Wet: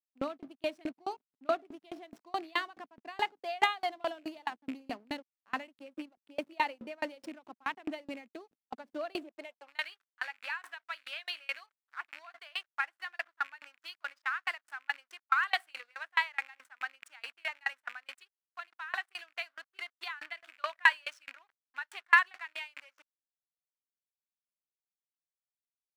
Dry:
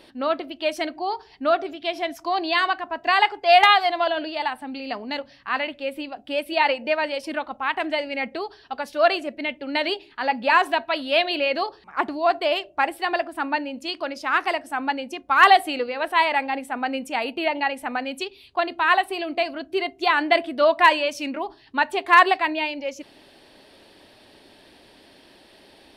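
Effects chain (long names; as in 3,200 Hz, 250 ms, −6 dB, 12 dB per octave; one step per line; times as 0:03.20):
loose part that buzzes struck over −38 dBFS, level −23 dBFS
dynamic equaliser 7,800 Hz, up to +5 dB, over −54 dBFS, Q 3.5
slack as between gear wheels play −32.5 dBFS
high-pass filter sweep 240 Hz → 1,500 Hz, 0:09.17–0:09.82
tremolo with a ramp in dB decaying 4.7 Hz, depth 32 dB
level −7 dB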